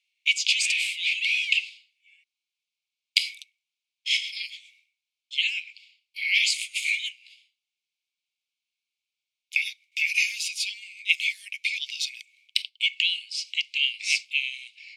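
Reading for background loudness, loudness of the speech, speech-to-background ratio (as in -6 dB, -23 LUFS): -26.0 LUFS, -25.5 LUFS, 0.5 dB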